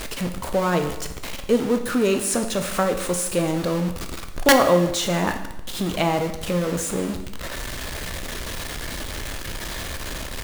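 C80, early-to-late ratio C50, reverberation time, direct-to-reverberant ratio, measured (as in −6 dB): 11.5 dB, 9.0 dB, 1.0 s, 6.0 dB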